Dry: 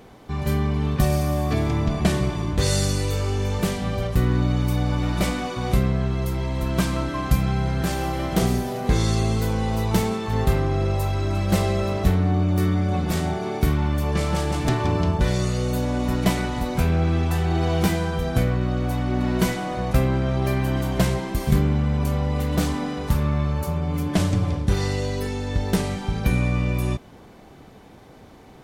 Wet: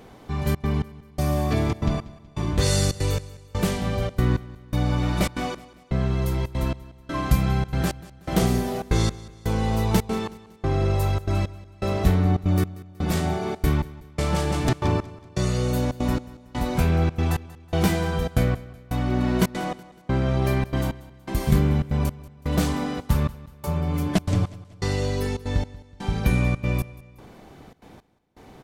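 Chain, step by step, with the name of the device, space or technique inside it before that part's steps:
trance gate with a delay (gate pattern "xxxxxx.xx...." 165 BPM −60 dB; repeating echo 186 ms, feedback 44%, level −19 dB)

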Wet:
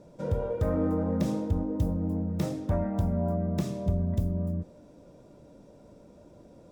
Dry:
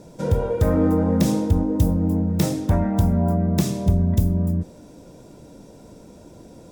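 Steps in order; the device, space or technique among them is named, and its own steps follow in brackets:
inside a helmet (high-shelf EQ 4,900 Hz −10 dB; hollow resonant body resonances 580/1,200 Hz, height 7 dB)
level −9 dB

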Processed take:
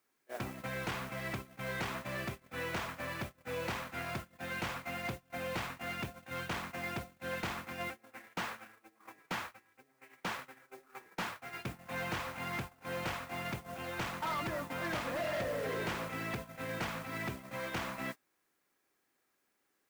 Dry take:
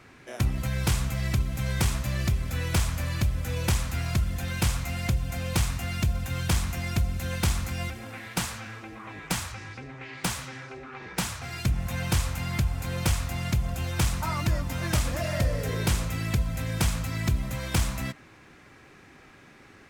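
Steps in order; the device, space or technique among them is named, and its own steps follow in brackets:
aircraft radio (band-pass filter 310–2,300 Hz; hard clipping −32.5 dBFS, distortion −10 dB; white noise bed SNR 15 dB; noise gate −40 dBFS, range −27 dB)

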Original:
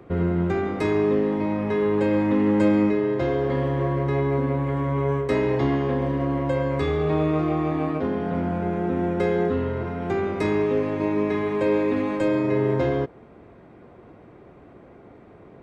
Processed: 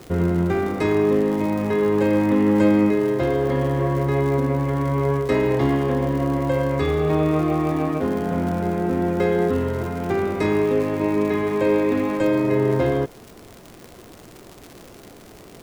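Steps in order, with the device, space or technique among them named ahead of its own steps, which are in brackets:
vinyl LP (surface crackle 120 per second −32 dBFS; pink noise bed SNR 31 dB)
level +2.5 dB

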